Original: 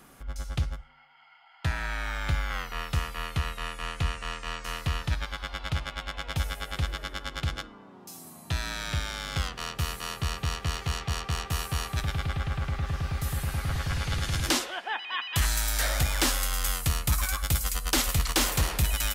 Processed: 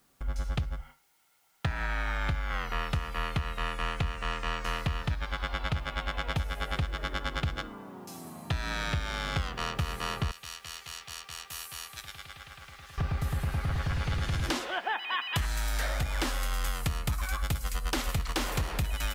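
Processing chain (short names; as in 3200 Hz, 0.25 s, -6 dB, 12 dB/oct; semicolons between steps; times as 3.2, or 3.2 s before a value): 10.31–12.98 pre-emphasis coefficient 0.97; gate with hold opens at -41 dBFS; high shelf 4200 Hz -11.5 dB; compressor 12:1, threshold -32 dBFS, peak gain reduction 12.5 dB; added noise white -75 dBFS; gain +5.5 dB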